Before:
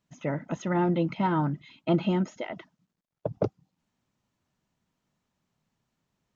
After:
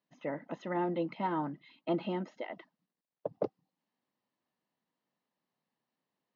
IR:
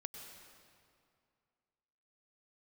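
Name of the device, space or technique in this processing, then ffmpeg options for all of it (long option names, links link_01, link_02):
phone earpiece: -af "highpass=350,equalizer=frequency=390:width_type=q:width=4:gain=-4,equalizer=frequency=640:width_type=q:width=4:gain=-4,equalizer=frequency=920:width_type=q:width=4:gain=-3,equalizer=frequency=1400:width_type=q:width=4:gain=-10,equalizer=frequency=2400:width_type=q:width=4:gain=-8,equalizer=frequency=3400:width_type=q:width=4:gain=-7,lowpass=frequency=4100:width=0.5412,lowpass=frequency=4100:width=1.3066,volume=-1dB"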